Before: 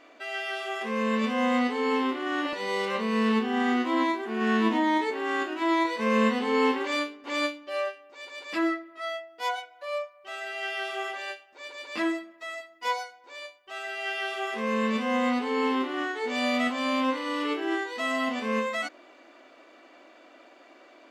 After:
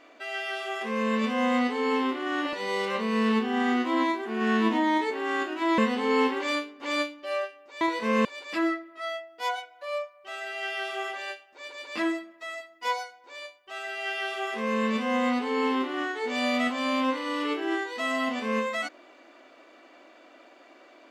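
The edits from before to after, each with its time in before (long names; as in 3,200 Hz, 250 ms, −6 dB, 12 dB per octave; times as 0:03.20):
0:05.78–0:06.22: move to 0:08.25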